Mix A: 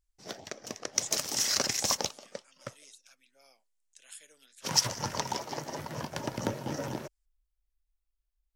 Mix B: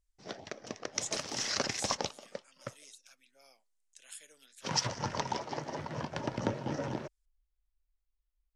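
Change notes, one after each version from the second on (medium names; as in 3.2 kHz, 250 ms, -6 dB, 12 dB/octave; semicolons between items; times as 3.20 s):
background: add distance through air 120 m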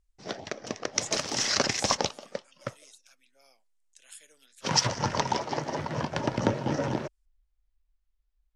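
background +7.0 dB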